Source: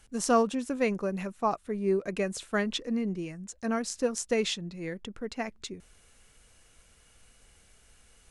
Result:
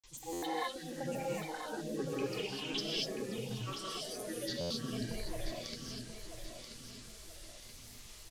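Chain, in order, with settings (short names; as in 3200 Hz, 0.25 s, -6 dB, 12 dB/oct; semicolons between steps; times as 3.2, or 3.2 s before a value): spectral noise reduction 12 dB; auto swell 0.287 s; compressor 4:1, threshold -51 dBFS, peak gain reduction 20.5 dB; fixed phaser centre 1300 Hz, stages 8; band noise 3400–9600 Hz -73 dBFS; grains, pitch spread up and down by 7 st; flange 1.2 Hz, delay 7.4 ms, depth 3 ms, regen -72%; on a send: feedback echo 0.983 s, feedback 40%, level -8.5 dB; on the sum: non-linear reverb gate 0.27 s rising, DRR -4.5 dB; stuck buffer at 0.32/4.6, samples 512, times 8; gain +17 dB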